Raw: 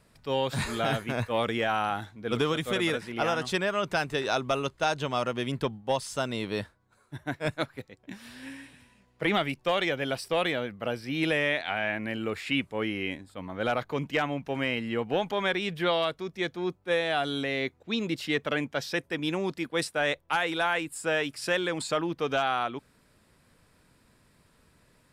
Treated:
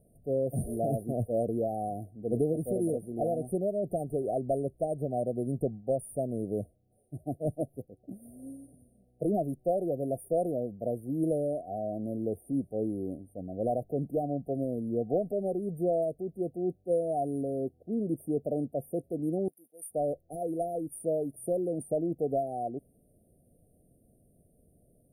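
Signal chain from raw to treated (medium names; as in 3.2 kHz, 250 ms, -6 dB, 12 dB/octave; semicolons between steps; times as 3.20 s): brick-wall FIR band-stop 760–8700 Hz; 19.48–19.91 s: differentiator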